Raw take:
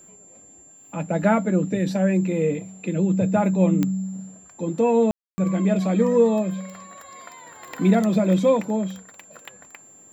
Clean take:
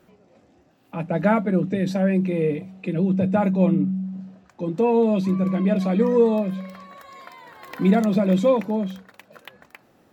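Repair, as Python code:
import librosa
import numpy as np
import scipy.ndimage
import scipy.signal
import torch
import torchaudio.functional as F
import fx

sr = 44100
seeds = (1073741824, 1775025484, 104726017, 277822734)

y = fx.fix_declick_ar(x, sr, threshold=10.0)
y = fx.notch(y, sr, hz=7300.0, q=30.0)
y = fx.fix_ambience(y, sr, seeds[0], print_start_s=0.4, print_end_s=0.9, start_s=5.11, end_s=5.38)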